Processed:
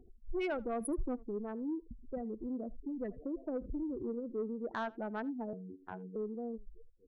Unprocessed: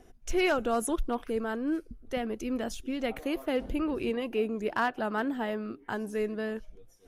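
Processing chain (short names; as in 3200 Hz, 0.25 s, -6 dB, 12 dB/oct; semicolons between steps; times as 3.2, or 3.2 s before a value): Wiener smoothing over 41 samples; spectral gate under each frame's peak -15 dB strong; 0.8–1.24 comb 3.7 ms, depth 91%; in parallel at 0 dB: compressor, threshold -42 dBFS, peak gain reduction 20.5 dB; 5.53–6.16 on the sum: robotiser 92.8 Hz; soft clip -21.5 dBFS, distortion -16 dB; on a send: echo 78 ms -23.5 dB; on the sum: record warp 33 1/3 rpm, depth 160 cents; gain -7 dB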